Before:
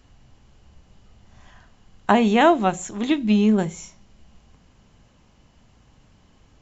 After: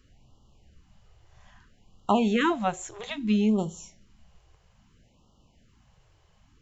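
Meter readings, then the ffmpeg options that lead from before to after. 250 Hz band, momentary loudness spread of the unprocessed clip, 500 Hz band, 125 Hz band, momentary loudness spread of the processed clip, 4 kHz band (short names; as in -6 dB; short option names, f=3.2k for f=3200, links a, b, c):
-6.0 dB, 12 LU, -8.0 dB, -6.0 dB, 14 LU, -5.5 dB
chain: -af "afftfilt=real='re*(1-between(b*sr/1024,210*pow(2000/210,0.5+0.5*sin(2*PI*0.61*pts/sr))/1.41,210*pow(2000/210,0.5+0.5*sin(2*PI*0.61*pts/sr))*1.41))':imag='im*(1-between(b*sr/1024,210*pow(2000/210,0.5+0.5*sin(2*PI*0.61*pts/sr))/1.41,210*pow(2000/210,0.5+0.5*sin(2*PI*0.61*pts/sr))*1.41))':win_size=1024:overlap=0.75,volume=-5.5dB"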